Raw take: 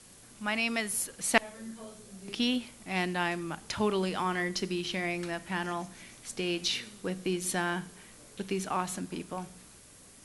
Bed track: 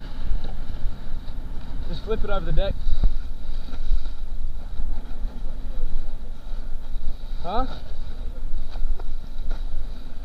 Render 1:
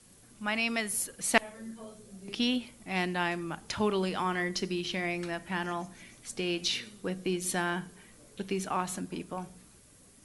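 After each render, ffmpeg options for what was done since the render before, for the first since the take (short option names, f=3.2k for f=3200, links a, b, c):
-af "afftdn=nr=6:nf=-54"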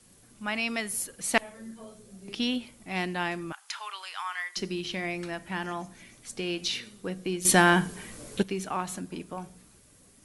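-filter_complex "[0:a]asettb=1/sr,asplit=3[a][b][c];[a]atrim=end=3.524[d];[b]atrim=start=3.52:end=4.57,asetpts=PTS-STARTPTS,afade=t=in:d=0.004:c=qsin,afade=t=out:st=1.046:d=0.004:c=qsin,highpass=f=1k:w=0.5412,highpass=f=1k:w=1.3066[e];[c]atrim=start=4.566[f];[d][e]acrossfade=d=0.004:c1=hsin:c2=qsin[g];[g][f]acrossfade=d=0.004:c1=qsin:c2=hsin,asplit=3[h][i][j];[h]atrim=end=7.452[k];[i]atrim=start=7.448:end=8.432,asetpts=PTS-STARTPTS,volume=11.5dB[l];[j]atrim=start=8.428[m];[k][l]acrossfade=d=0.004:c1=hsin:c2=hsin[n];[n][m]acrossfade=d=0.004:c1=hsin:c2=hsin"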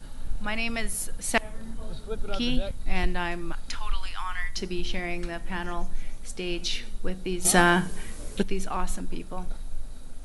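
-filter_complex "[1:a]volume=-8dB[a];[0:a][a]amix=inputs=2:normalize=0"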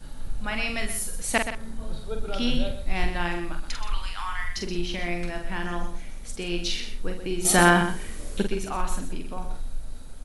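-filter_complex "[0:a]asplit=2[a][b];[b]adelay=46,volume=-5.5dB[c];[a][c]amix=inputs=2:normalize=0,aecho=1:1:125:0.335"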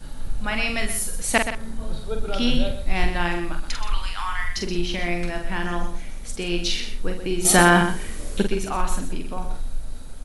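-af "volume=4dB,alimiter=limit=-1dB:level=0:latency=1"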